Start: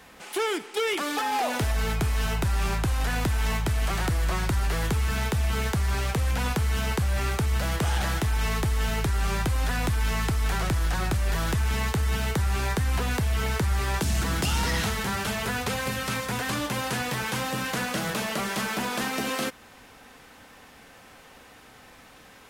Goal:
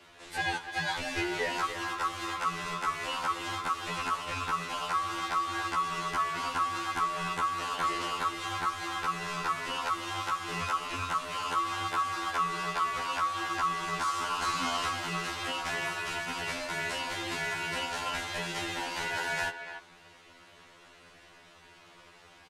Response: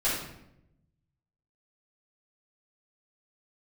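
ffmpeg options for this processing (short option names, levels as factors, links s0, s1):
-filter_complex "[0:a]aeval=exprs='val(0)*sin(2*PI*1200*n/s)':c=same,lowpass=8400,asplit=2[s0][s1];[s1]adelay=290,highpass=300,lowpass=3400,asoftclip=type=hard:threshold=0.0562,volume=0.355[s2];[s0][s2]amix=inputs=2:normalize=0,afftfilt=real='re*2*eq(mod(b,4),0)':imag='im*2*eq(mod(b,4),0)':win_size=2048:overlap=0.75"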